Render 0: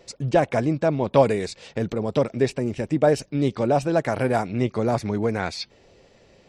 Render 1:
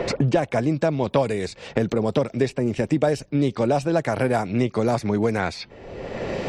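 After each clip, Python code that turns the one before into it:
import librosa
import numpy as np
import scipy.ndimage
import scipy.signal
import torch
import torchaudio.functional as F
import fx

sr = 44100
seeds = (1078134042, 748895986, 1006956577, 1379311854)

y = fx.band_squash(x, sr, depth_pct=100)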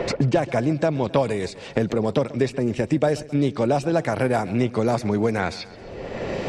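y = fx.echo_feedback(x, sr, ms=133, feedback_pct=58, wet_db=-19)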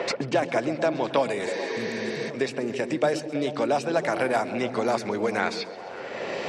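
y = fx.spec_repair(x, sr, seeds[0], start_s=1.49, length_s=0.78, low_hz=250.0, high_hz=6600.0, source='before')
y = fx.weighting(y, sr, curve='A')
y = fx.echo_stepped(y, sr, ms=109, hz=160.0, octaves=0.7, feedback_pct=70, wet_db=-2.5)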